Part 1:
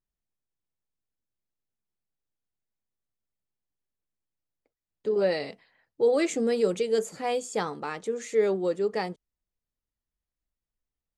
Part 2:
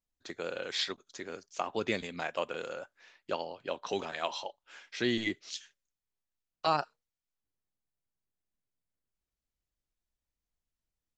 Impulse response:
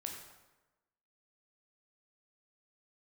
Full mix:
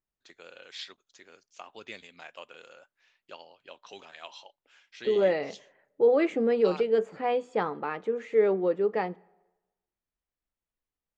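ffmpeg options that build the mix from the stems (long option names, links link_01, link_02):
-filter_complex "[0:a]lowpass=1800,lowshelf=frequency=160:gain=-8.5,volume=1.5dB,asplit=2[link_01][link_02];[link_02]volume=-19.5dB[link_03];[1:a]lowshelf=frequency=490:gain=-8.5,volume=-9.5dB[link_04];[2:a]atrim=start_sample=2205[link_05];[link_03][link_05]afir=irnorm=-1:irlink=0[link_06];[link_01][link_04][link_06]amix=inputs=3:normalize=0,equalizer=frequency=2800:width_type=o:width=0.69:gain=4"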